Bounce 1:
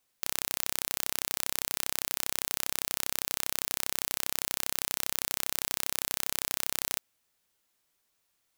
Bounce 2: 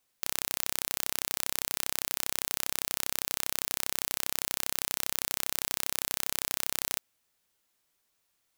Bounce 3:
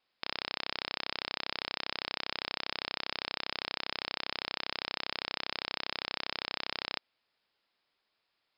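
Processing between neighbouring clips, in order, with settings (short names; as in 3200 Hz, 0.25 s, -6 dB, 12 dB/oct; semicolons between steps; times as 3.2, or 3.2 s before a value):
nothing audible
Chebyshev low-pass 5200 Hz, order 10; low shelf 150 Hz -11.5 dB; gain +1.5 dB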